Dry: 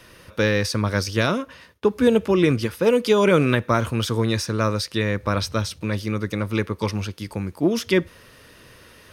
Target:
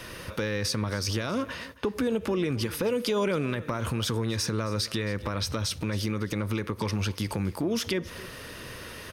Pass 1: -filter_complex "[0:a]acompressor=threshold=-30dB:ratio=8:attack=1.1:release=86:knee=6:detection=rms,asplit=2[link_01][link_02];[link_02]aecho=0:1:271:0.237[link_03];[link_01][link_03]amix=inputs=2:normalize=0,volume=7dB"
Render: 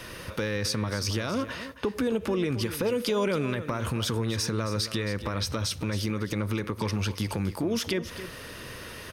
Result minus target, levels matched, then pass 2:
echo-to-direct +6 dB
-filter_complex "[0:a]acompressor=threshold=-30dB:ratio=8:attack=1.1:release=86:knee=6:detection=rms,asplit=2[link_01][link_02];[link_02]aecho=0:1:271:0.119[link_03];[link_01][link_03]amix=inputs=2:normalize=0,volume=7dB"

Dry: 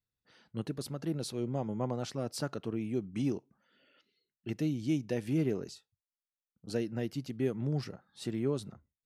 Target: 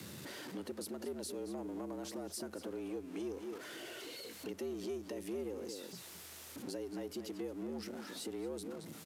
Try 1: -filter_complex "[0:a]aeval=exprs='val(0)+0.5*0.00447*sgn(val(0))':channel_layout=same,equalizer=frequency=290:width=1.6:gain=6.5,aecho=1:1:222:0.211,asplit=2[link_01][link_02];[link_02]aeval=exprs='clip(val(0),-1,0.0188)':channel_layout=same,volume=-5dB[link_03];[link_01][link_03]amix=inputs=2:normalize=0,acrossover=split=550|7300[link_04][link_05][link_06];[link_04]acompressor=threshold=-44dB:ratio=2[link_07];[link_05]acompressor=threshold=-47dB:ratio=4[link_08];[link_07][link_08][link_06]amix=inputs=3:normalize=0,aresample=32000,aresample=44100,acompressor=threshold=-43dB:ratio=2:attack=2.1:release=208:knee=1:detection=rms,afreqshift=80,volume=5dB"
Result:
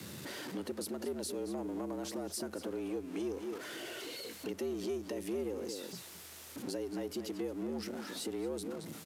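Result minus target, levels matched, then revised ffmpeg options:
downward compressor: peak gain reduction −4 dB
-filter_complex "[0:a]aeval=exprs='val(0)+0.5*0.00447*sgn(val(0))':channel_layout=same,equalizer=frequency=290:width=1.6:gain=6.5,aecho=1:1:222:0.211,asplit=2[link_01][link_02];[link_02]aeval=exprs='clip(val(0),-1,0.0188)':channel_layout=same,volume=-5dB[link_03];[link_01][link_03]amix=inputs=2:normalize=0,acrossover=split=550|7300[link_04][link_05][link_06];[link_04]acompressor=threshold=-44dB:ratio=2[link_07];[link_05]acompressor=threshold=-47dB:ratio=4[link_08];[link_07][link_08][link_06]amix=inputs=3:normalize=0,aresample=32000,aresample=44100,acompressor=threshold=-50.5dB:ratio=2:attack=2.1:release=208:knee=1:detection=rms,afreqshift=80,volume=5dB"

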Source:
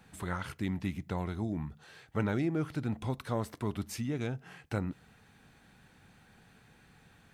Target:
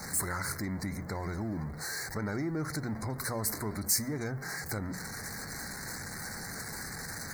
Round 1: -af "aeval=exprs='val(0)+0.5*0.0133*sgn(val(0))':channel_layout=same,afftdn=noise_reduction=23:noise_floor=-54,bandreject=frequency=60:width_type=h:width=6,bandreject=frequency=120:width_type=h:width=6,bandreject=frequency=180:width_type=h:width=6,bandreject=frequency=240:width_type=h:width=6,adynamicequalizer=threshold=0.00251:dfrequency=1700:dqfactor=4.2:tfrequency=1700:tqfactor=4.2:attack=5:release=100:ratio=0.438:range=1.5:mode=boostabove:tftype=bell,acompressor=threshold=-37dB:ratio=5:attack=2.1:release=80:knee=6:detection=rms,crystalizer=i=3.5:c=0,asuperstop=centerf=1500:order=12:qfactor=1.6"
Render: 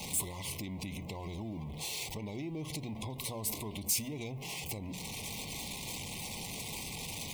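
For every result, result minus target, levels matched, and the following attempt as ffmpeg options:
downward compressor: peak gain reduction +6.5 dB; 2,000 Hz band −4.0 dB
-af "aeval=exprs='val(0)+0.5*0.0133*sgn(val(0))':channel_layout=same,afftdn=noise_reduction=23:noise_floor=-54,bandreject=frequency=60:width_type=h:width=6,bandreject=frequency=120:width_type=h:width=6,bandreject=frequency=180:width_type=h:width=6,bandreject=frequency=240:width_type=h:width=6,adynamicequalizer=threshold=0.00251:dfrequency=1700:dqfactor=4.2:tfrequency=1700:tqfactor=4.2:attack=5:release=100:ratio=0.438:range=1.5:mode=boostabove:tftype=bell,acompressor=threshold=-29dB:ratio=5:attack=2.1:release=80:knee=6:detection=rms,crystalizer=i=3.5:c=0,asuperstop=centerf=1500:order=12:qfactor=1.6"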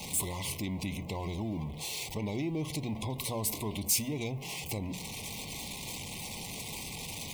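2,000 Hz band −5.0 dB
-af "aeval=exprs='val(0)+0.5*0.0133*sgn(val(0))':channel_layout=same,afftdn=noise_reduction=23:noise_floor=-54,bandreject=frequency=60:width_type=h:width=6,bandreject=frequency=120:width_type=h:width=6,bandreject=frequency=180:width_type=h:width=6,bandreject=frequency=240:width_type=h:width=6,adynamicequalizer=threshold=0.00251:dfrequency=1700:dqfactor=4.2:tfrequency=1700:tqfactor=4.2:attack=5:release=100:ratio=0.438:range=1.5:mode=boostabove:tftype=bell,acompressor=threshold=-29dB:ratio=5:attack=2.1:release=80:knee=6:detection=rms,crystalizer=i=3.5:c=0,asuperstop=centerf=3000:order=12:qfactor=1.6"

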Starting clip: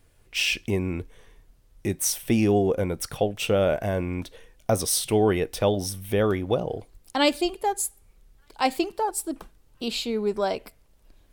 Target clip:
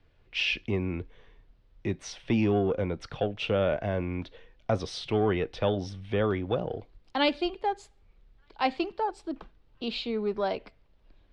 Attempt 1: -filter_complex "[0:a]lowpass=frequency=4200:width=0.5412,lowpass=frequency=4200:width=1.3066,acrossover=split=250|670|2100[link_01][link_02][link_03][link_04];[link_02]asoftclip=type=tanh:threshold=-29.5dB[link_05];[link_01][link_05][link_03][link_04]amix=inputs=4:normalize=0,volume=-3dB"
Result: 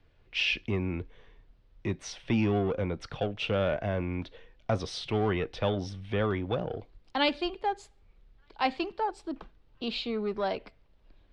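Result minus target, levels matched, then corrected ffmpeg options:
soft clipping: distortion +8 dB
-filter_complex "[0:a]lowpass=frequency=4200:width=0.5412,lowpass=frequency=4200:width=1.3066,acrossover=split=250|670|2100[link_01][link_02][link_03][link_04];[link_02]asoftclip=type=tanh:threshold=-21.5dB[link_05];[link_01][link_05][link_03][link_04]amix=inputs=4:normalize=0,volume=-3dB"

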